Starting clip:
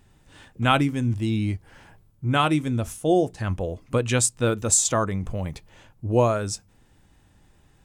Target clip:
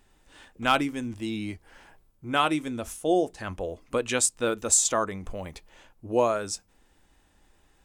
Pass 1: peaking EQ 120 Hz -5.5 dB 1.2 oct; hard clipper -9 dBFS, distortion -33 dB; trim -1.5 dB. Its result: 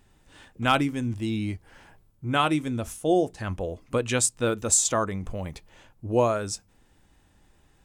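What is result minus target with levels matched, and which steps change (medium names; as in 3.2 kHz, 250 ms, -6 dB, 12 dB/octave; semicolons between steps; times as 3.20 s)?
125 Hz band +8.0 dB
change: peaking EQ 120 Hz -16 dB 1.2 oct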